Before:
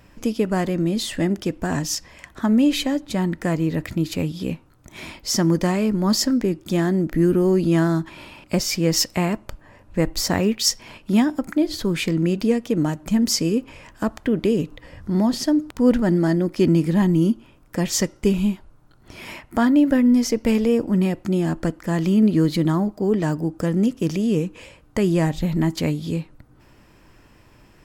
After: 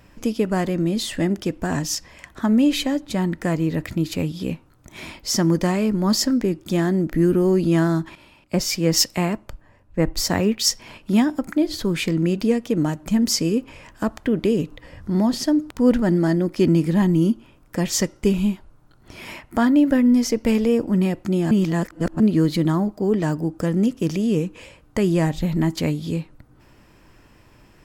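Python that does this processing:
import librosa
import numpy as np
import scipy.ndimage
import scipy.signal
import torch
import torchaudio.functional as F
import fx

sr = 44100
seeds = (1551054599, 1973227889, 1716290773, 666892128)

y = fx.band_widen(x, sr, depth_pct=40, at=(8.15, 10.58))
y = fx.edit(y, sr, fx.reverse_span(start_s=21.51, length_s=0.69), tone=tone)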